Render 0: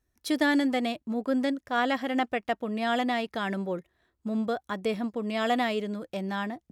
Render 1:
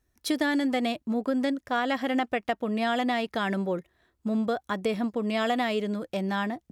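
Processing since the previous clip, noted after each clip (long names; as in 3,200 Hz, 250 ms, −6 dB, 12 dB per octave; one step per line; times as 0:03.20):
downward compressor, threshold −26 dBFS, peak gain reduction 6 dB
level +3.5 dB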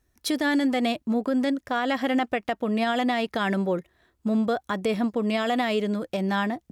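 brickwall limiter −19.5 dBFS, peak gain reduction 5 dB
level +3.5 dB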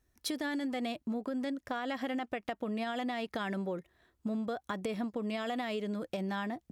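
downward compressor, threshold −28 dBFS, peak gain reduction 8.5 dB
level −4.5 dB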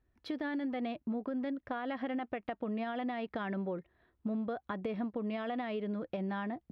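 high-frequency loss of the air 360 metres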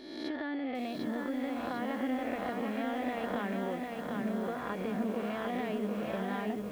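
peak hold with a rise ahead of every peak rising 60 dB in 1.16 s
feedback echo at a low word length 749 ms, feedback 55%, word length 9 bits, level −3 dB
level −2 dB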